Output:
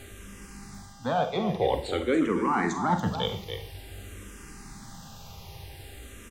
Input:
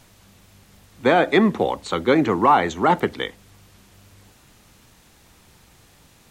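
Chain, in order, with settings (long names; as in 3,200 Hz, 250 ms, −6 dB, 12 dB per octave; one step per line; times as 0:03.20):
low-shelf EQ 170 Hz +8 dB
reversed playback
downward compressor 6 to 1, threshold −28 dBFS, peak gain reduction 17 dB
reversed playback
hum with harmonics 400 Hz, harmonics 26, −57 dBFS −4 dB per octave
on a send: single-tap delay 284 ms −10 dB
on the sum: four-comb reverb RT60 0.44 s, combs from 33 ms, DRR 7.5 dB
frequency shifter mixed with the dry sound −0.5 Hz
level +6.5 dB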